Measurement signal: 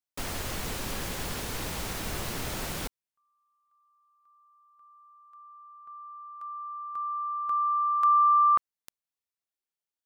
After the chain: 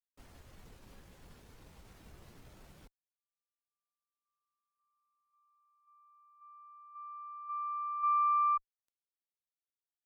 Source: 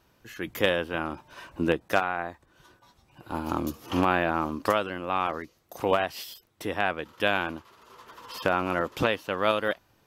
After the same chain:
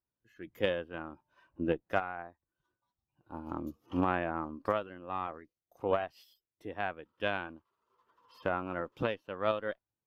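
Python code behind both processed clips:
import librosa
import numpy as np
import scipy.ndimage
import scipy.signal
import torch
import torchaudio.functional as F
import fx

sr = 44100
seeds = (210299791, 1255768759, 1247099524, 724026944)

y = np.where(x < 0.0, 10.0 ** (-3.0 / 20.0) * x, x)
y = fx.cheby_harmonics(y, sr, harmonics=(2,), levels_db=(-15,), full_scale_db=-7.0)
y = fx.spectral_expand(y, sr, expansion=1.5)
y = y * 10.0 ** (-8.0 / 20.0)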